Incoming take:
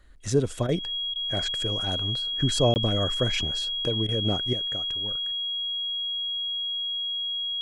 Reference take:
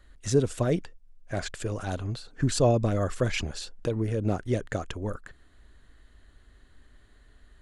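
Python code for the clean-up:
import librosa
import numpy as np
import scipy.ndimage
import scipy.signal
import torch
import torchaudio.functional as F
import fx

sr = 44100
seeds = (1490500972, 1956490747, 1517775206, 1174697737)

y = fx.notch(x, sr, hz=3300.0, q=30.0)
y = fx.fix_interpolate(y, sr, at_s=(2.74,), length_ms=19.0)
y = fx.fix_interpolate(y, sr, at_s=(0.67, 1.14, 4.07), length_ms=16.0)
y = fx.fix_level(y, sr, at_s=4.53, step_db=9.5)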